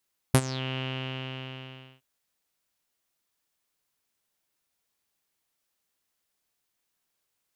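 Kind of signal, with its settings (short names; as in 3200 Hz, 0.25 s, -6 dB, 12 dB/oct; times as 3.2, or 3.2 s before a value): synth note saw C3 12 dB/oct, low-pass 2900 Hz, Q 8.3, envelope 2 oct, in 0.27 s, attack 4.2 ms, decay 0.06 s, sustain -18 dB, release 1.23 s, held 0.44 s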